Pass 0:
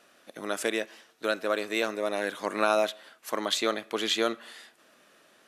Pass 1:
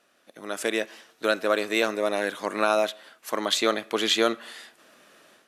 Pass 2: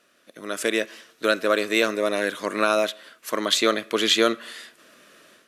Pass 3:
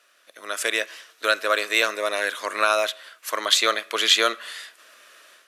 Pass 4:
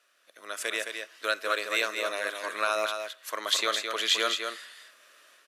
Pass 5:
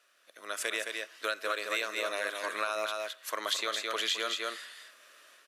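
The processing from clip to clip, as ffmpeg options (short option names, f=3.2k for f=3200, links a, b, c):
-af "dynaudnorm=f=410:g=3:m=11dB,volume=-5.5dB"
-af "equalizer=f=810:t=o:w=0.36:g=-11,volume=3.5dB"
-af "highpass=720,volume=3dB"
-af "aecho=1:1:215:0.501,volume=-7.5dB"
-af "acompressor=threshold=-28dB:ratio=6"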